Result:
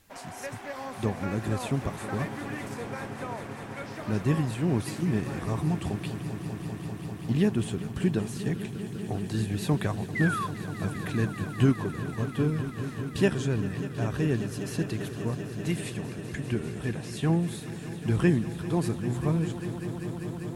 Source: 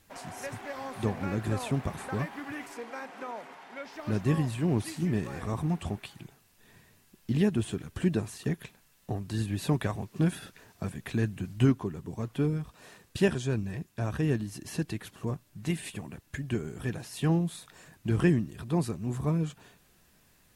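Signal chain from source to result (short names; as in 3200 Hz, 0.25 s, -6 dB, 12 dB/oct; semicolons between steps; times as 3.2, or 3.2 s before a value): 10.15–10.47 painted sound fall 1000–2100 Hz -32 dBFS; 15.82–17.39 treble ducked by the level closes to 2300 Hz, closed at -24.5 dBFS; swelling echo 0.197 s, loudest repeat 5, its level -15 dB; gain +1 dB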